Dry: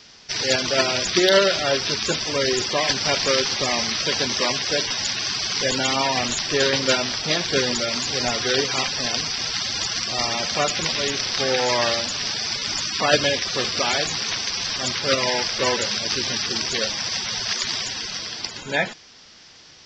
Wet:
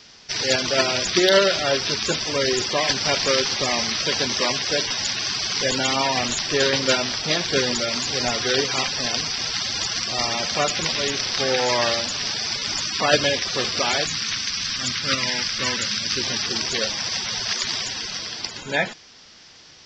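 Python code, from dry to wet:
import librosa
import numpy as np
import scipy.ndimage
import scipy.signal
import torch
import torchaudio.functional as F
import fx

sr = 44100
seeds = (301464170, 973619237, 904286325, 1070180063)

y = fx.band_shelf(x, sr, hz=580.0, db=-10.5, octaves=1.7, at=(14.05, 16.17))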